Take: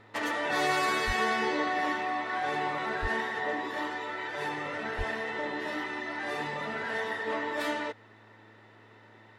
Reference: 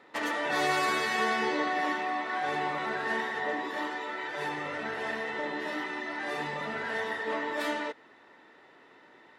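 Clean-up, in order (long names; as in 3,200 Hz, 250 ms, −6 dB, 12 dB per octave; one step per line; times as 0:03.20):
hum removal 108.7 Hz, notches 8
0:01.06–0:01.18: high-pass filter 140 Hz 24 dB per octave
0:03.01–0:03.13: high-pass filter 140 Hz 24 dB per octave
0:04.97–0:05.09: high-pass filter 140 Hz 24 dB per octave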